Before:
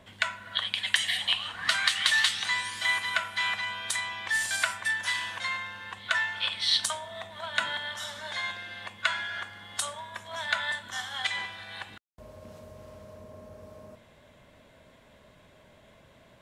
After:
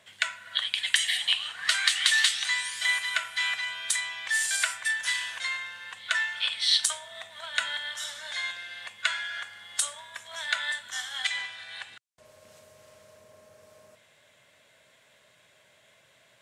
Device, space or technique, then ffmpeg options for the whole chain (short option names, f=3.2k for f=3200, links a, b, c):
filter by subtraction: -filter_complex "[0:a]asettb=1/sr,asplit=3[a][b][c];[a]atrim=end=11.294[d];[b]atrim=start=11.29:end=12.25,asetpts=PTS-STARTPTS,afade=t=in:d=0.004:c=qsin,afade=t=out:st=0.956:d=0.004:c=qsin,lowpass=9.9k[e];[c]atrim=start=12.246[f];[d][e]acrossfade=d=0.004:c1=hsin:c2=qsin[g];[g][f]acrossfade=d=0.004:c1=qsin:c2=hsin,asplit=2[h][i];[i]lowpass=1.4k,volume=-1[j];[h][j]amix=inputs=2:normalize=0,equalizer=f=125:t=o:w=1:g=8,equalizer=f=250:t=o:w=1:g=-5,equalizer=f=1k:t=o:w=1:g=-7,equalizer=f=8k:t=o:w=1:g=6"